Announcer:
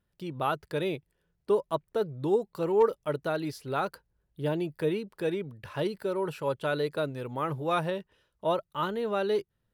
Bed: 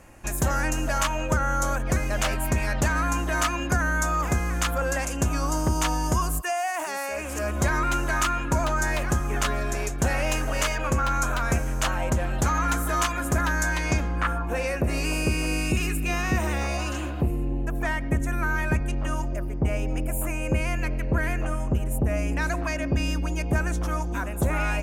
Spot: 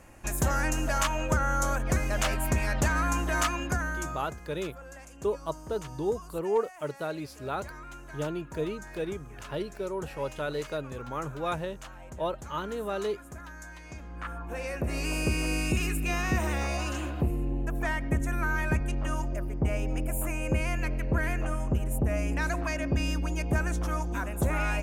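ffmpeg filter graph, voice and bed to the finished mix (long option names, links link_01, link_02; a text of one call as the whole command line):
ffmpeg -i stem1.wav -i stem2.wav -filter_complex "[0:a]adelay=3750,volume=-3.5dB[link_01];[1:a]volume=14.5dB,afade=type=out:start_time=3.41:duration=0.93:silence=0.133352,afade=type=in:start_time=13.93:duration=1.4:silence=0.141254[link_02];[link_01][link_02]amix=inputs=2:normalize=0" out.wav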